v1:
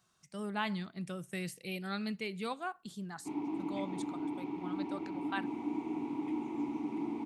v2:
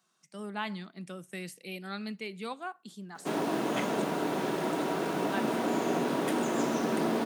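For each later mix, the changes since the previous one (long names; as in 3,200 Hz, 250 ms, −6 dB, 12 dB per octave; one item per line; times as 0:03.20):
background: remove formant filter u
master: add high-pass filter 180 Hz 24 dB per octave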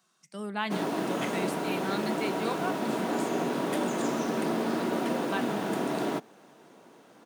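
speech +3.5 dB
background: entry −2.55 s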